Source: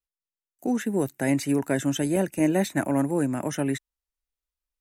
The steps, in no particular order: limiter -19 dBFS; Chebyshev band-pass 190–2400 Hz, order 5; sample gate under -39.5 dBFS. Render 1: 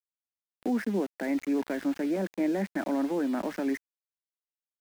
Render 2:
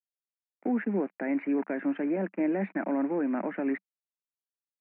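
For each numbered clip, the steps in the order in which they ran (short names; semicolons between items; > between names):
limiter > Chebyshev band-pass > sample gate; limiter > sample gate > Chebyshev band-pass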